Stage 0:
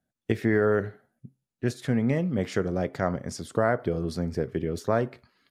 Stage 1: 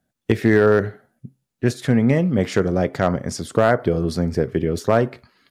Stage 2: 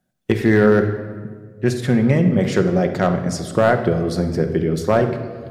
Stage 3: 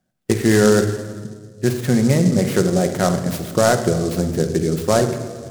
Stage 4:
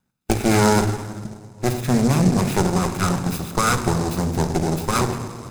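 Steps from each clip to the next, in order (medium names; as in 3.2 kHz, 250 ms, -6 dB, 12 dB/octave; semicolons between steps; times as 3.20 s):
overload inside the chain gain 13.5 dB; trim +8 dB
simulated room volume 1900 m³, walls mixed, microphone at 0.98 m
delay time shaken by noise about 5.9 kHz, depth 0.054 ms
comb filter that takes the minimum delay 0.79 ms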